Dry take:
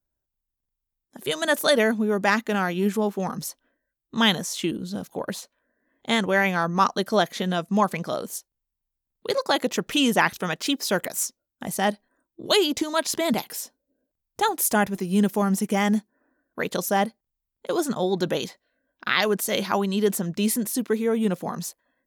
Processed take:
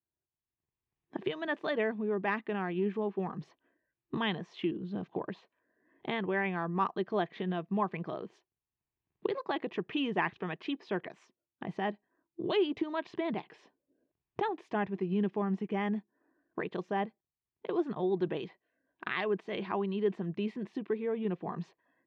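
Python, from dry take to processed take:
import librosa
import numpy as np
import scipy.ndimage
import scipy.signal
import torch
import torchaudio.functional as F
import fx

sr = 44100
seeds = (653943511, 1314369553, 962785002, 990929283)

y = fx.recorder_agc(x, sr, target_db=-15.5, rise_db_per_s=17.0, max_gain_db=30)
y = fx.cabinet(y, sr, low_hz=120.0, low_slope=12, high_hz=2500.0, hz=(240.0, 360.0, 550.0, 840.0, 1400.0, 2100.0), db=(-9, 4, -10, -3, -10, -4))
y = y * librosa.db_to_amplitude(-6.5)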